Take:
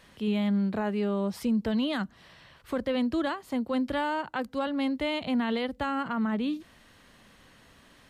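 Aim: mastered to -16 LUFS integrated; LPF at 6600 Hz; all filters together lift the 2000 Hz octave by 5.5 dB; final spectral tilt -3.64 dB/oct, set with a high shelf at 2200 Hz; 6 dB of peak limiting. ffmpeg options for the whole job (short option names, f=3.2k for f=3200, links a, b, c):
-af "lowpass=6.6k,equalizer=f=2k:t=o:g=4,highshelf=f=2.2k:g=6,volume=15dB,alimiter=limit=-7dB:level=0:latency=1"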